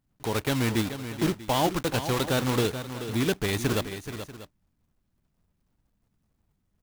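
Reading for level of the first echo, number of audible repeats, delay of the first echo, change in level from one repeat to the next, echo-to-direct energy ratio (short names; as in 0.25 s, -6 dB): -10.5 dB, 2, 0.43 s, no steady repeat, -9.5 dB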